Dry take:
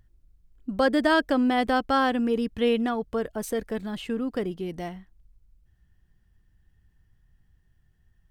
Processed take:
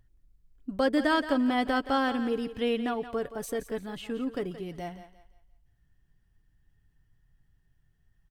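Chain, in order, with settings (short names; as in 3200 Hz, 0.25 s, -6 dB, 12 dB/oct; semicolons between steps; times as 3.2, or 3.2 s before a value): comb 7.1 ms, depth 32%; on a send: thinning echo 0.173 s, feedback 34%, high-pass 370 Hz, level -11.5 dB; on the sum: gain -4 dB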